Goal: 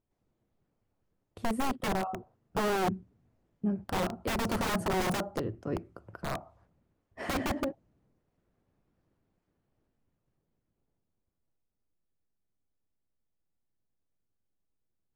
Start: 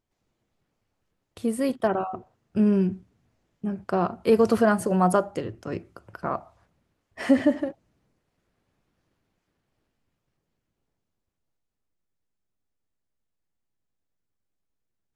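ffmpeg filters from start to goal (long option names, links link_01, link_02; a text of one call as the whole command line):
ffmpeg -i in.wav -af "aeval=exprs='(mod(10*val(0)+1,2)-1)/10':channel_layout=same,tiltshelf=frequency=1400:gain=6,volume=-6.5dB" out.wav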